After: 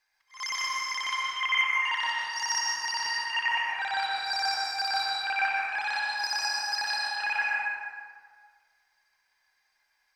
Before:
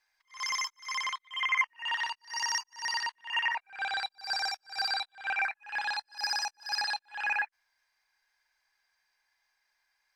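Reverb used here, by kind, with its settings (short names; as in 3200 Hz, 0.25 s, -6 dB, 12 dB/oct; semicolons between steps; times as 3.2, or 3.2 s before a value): plate-style reverb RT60 1.8 s, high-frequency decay 0.65×, pre-delay 0.105 s, DRR -2.5 dB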